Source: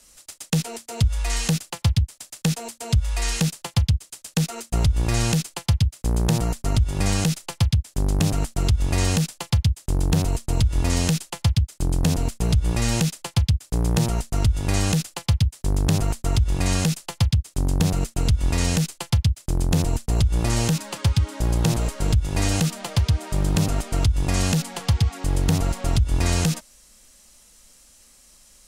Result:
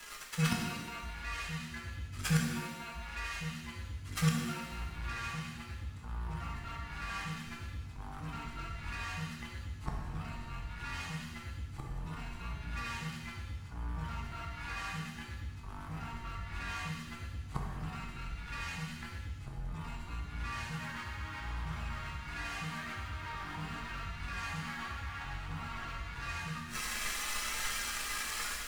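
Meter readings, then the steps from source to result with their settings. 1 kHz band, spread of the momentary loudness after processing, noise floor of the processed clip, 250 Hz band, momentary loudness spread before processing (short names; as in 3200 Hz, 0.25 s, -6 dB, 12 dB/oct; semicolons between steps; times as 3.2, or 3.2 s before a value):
-8.0 dB, 9 LU, -46 dBFS, -16.5 dB, 4 LU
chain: median-filter separation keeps harmonic; flange 0.87 Hz, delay 1.1 ms, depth 2 ms, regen +62%; AGC gain up to 5 dB; three-band isolator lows -14 dB, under 530 Hz, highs -21 dB, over 2500 Hz; de-hum 48.54 Hz, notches 4; pre-echo 0.152 s -21.5 dB; compressor 3:1, threshold -41 dBFS, peak gain reduction 11 dB; EQ curve 300 Hz 0 dB, 450 Hz -21 dB, 1200 Hz +7 dB; sample leveller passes 3; flipped gate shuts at -34 dBFS, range -26 dB; shimmer reverb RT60 1.2 s, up +7 st, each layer -8 dB, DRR -0.5 dB; gain +14.5 dB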